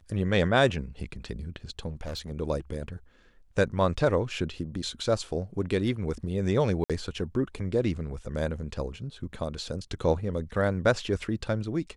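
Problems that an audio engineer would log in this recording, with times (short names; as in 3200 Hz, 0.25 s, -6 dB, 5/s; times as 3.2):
1.89–2.31 clipped -31 dBFS
6.84–6.9 gap 57 ms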